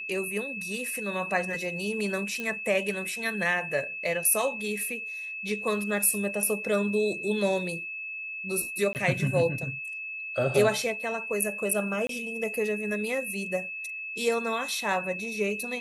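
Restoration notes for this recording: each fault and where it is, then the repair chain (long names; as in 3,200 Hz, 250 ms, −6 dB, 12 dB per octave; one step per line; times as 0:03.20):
whistle 2,600 Hz −34 dBFS
0:02.40: click −20 dBFS
0:08.93–0:08.95: drop-out 19 ms
0:12.07–0:12.09: drop-out 23 ms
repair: click removal
notch filter 2,600 Hz, Q 30
repair the gap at 0:08.93, 19 ms
repair the gap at 0:12.07, 23 ms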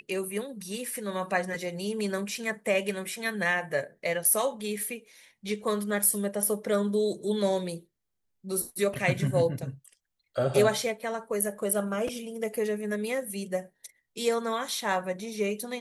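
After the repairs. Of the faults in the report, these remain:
none of them is left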